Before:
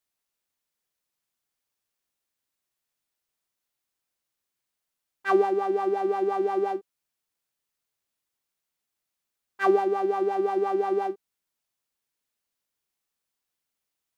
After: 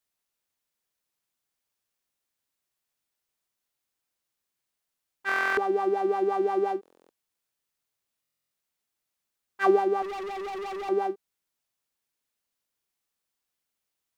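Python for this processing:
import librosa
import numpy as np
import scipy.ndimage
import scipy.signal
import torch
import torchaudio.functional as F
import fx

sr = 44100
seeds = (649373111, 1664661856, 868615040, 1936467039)

y = fx.clip_hard(x, sr, threshold_db=-33.5, at=(10.02, 10.89))
y = fx.buffer_glitch(y, sr, at_s=(5.27, 6.81, 8.22), block=1024, repeats=12)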